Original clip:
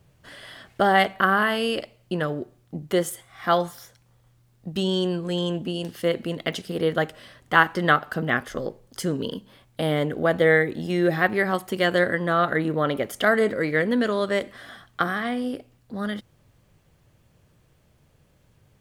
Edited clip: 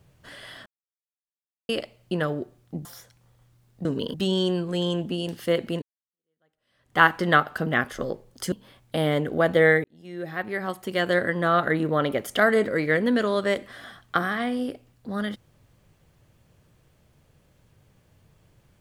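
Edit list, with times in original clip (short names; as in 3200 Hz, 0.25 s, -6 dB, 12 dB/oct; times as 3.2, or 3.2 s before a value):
0.66–1.69 mute
2.85–3.7 cut
6.38–7.55 fade in exponential
9.08–9.37 move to 4.7
10.69–12.31 fade in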